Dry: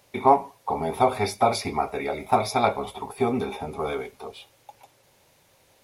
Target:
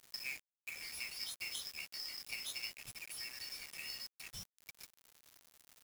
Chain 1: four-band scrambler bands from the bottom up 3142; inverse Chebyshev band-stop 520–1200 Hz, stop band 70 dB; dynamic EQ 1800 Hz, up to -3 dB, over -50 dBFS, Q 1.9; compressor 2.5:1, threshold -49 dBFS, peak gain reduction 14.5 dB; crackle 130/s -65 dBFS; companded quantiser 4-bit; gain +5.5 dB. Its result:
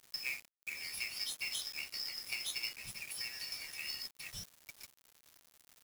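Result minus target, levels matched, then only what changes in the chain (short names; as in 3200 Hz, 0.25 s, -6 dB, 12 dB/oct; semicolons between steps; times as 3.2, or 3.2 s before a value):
compressor: peak gain reduction -4 dB
change: compressor 2.5:1, threshold -56 dBFS, peak gain reduction 18.5 dB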